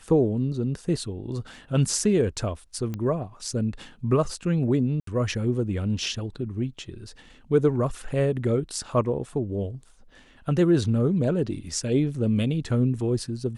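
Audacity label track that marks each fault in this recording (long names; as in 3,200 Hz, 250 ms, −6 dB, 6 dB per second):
2.940000	2.940000	click −19 dBFS
5.000000	5.070000	drop-out 73 ms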